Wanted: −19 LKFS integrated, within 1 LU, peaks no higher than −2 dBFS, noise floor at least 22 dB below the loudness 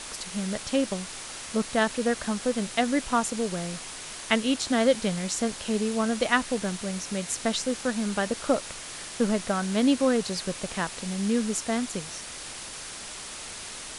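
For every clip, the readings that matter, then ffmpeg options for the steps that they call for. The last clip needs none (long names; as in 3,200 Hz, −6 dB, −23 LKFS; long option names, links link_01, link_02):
background noise floor −40 dBFS; target noise floor −50 dBFS; integrated loudness −28.0 LKFS; sample peak −7.0 dBFS; target loudness −19.0 LKFS
→ -af "afftdn=noise_reduction=10:noise_floor=-40"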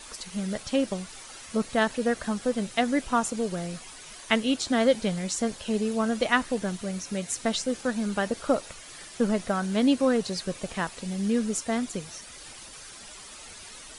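background noise floor −45 dBFS; target noise floor −50 dBFS
→ -af "afftdn=noise_reduction=6:noise_floor=-45"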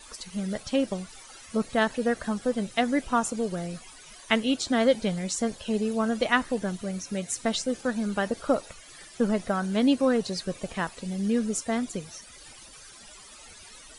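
background noise floor −49 dBFS; target noise floor −50 dBFS
→ -af "afftdn=noise_reduction=6:noise_floor=-49"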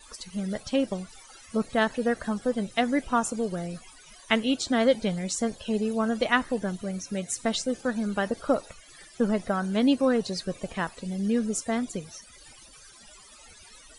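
background noise floor −52 dBFS; integrated loudness −27.5 LKFS; sample peak −7.0 dBFS; target loudness −19.0 LKFS
→ -af "volume=8.5dB,alimiter=limit=-2dB:level=0:latency=1"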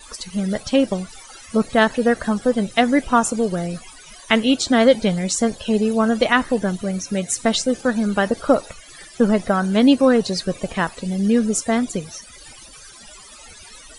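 integrated loudness −19.5 LKFS; sample peak −2.0 dBFS; background noise floor −43 dBFS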